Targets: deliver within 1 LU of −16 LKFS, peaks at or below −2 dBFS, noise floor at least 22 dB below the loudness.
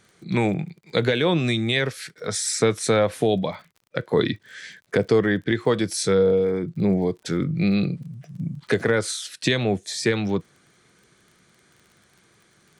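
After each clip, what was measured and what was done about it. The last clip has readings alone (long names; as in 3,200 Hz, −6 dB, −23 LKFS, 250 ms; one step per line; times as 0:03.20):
crackle rate 29 per second; integrated loudness −23.0 LKFS; sample peak −5.5 dBFS; target loudness −16.0 LKFS
→ click removal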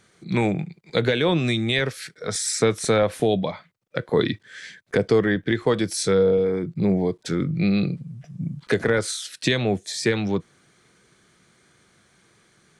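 crackle rate 0 per second; integrated loudness −23.0 LKFS; sample peak −5.5 dBFS; target loudness −16.0 LKFS
→ level +7 dB
brickwall limiter −2 dBFS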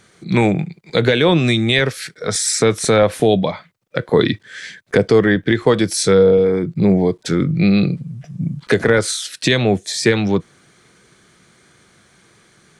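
integrated loudness −16.5 LKFS; sample peak −2.0 dBFS; background noise floor −54 dBFS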